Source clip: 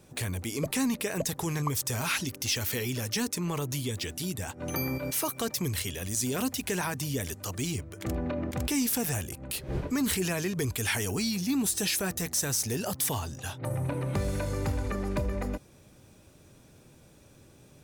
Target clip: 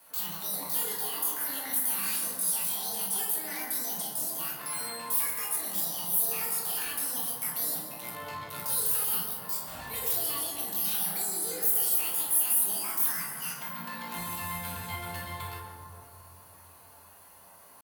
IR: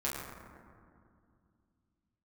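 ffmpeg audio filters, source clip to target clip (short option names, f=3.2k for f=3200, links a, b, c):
-filter_complex "[0:a]acrossover=split=420 6500:gain=0.0794 1 0.2[a][b][c];[a][b][c]amix=inputs=3:normalize=0,acrossover=split=170|1100|6700[d][e][f][g];[e]acompressor=threshold=-51dB:ratio=4[h];[f]alimiter=level_in=7dB:limit=-24dB:level=0:latency=1:release=40,volume=-7dB[i];[d][h][i][g]amix=inputs=4:normalize=0,asoftclip=type=hard:threshold=-36.5dB,asetrate=78577,aresample=44100,atempo=0.561231,aexciter=amount=6.4:drive=4.3:freq=9.3k[j];[1:a]atrim=start_sample=2205,asetrate=36603,aresample=44100[k];[j][k]afir=irnorm=-1:irlink=0"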